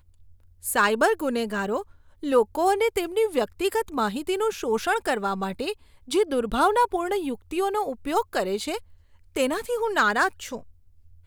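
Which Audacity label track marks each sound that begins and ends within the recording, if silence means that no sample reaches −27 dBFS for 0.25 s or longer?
0.650000	1.810000	sound
2.230000	5.720000	sound
6.110000	8.770000	sound
9.360000	10.570000	sound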